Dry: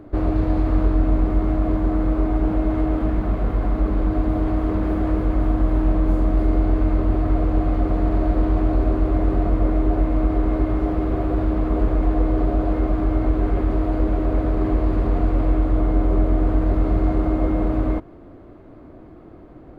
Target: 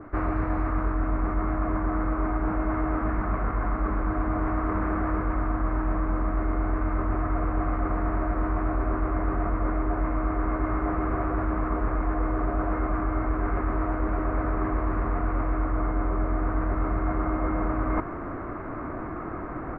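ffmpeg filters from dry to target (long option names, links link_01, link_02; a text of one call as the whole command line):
ffmpeg -i in.wav -af "firequalizer=gain_entry='entry(540,0);entry(1200,15);entry(2200,11);entry(3300,-8)':delay=0.05:min_phase=1,areverse,acompressor=threshold=-34dB:ratio=4,areverse,adynamicequalizer=threshold=0.00158:dfrequency=1800:dqfactor=0.7:tfrequency=1800:tqfactor=0.7:attack=5:release=100:ratio=0.375:range=3:mode=cutabove:tftype=highshelf,volume=8dB" out.wav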